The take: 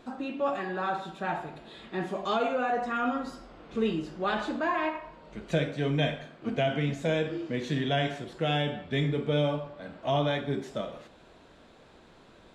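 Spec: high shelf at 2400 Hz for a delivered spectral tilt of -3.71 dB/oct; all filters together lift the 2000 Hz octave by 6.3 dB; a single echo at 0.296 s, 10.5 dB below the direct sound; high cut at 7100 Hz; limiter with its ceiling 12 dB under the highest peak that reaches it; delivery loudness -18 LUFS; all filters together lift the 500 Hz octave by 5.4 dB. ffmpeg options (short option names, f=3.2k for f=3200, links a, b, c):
-af "lowpass=7.1k,equalizer=f=500:t=o:g=6,equalizer=f=2k:t=o:g=4.5,highshelf=f=2.4k:g=7,alimiter=limit=-22.5dB:level=0:latency=1,aecho=1:1:296:0.299,volume=14dB"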